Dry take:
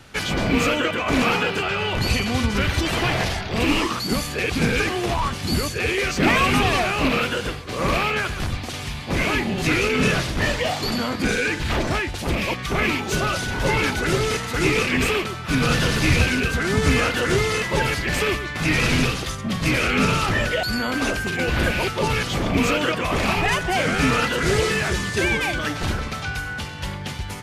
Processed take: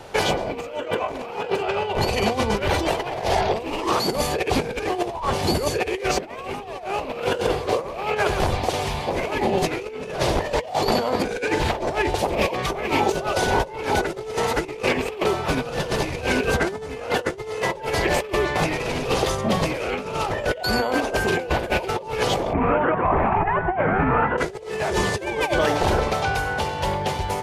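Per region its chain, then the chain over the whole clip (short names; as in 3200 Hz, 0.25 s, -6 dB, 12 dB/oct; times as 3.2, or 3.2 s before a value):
22.53–24.38 inverse Chebyshev low-pass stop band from 5700 Hz, stop band 60 dB + bell 500 Hz -12.5 dB 1 oct
whole clip: band shelf 600 Hz +12 dB; notches 60/120/180/240/300/360/420 Hz; negative-ratio compressor -20 dBFS, ratio -0.5; gain -2.5 dB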